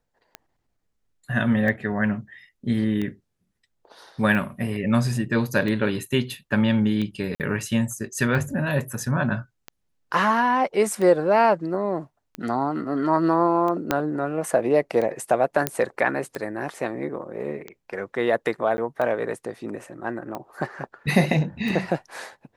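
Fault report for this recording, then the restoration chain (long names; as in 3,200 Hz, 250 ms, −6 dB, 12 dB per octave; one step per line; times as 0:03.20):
scratch tick 45 rpm −18 dBFS
0:07.35–0:07.40: drop-out 48 ms
0:13.91: click −6 dBFS
0:15.67: click −4 dBFS
0:18.77–0:18.78: drop-out 10 ms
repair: click removal
repair the gap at 0:07.35, 48 ms
repair the gap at 0:18.77, 10 ms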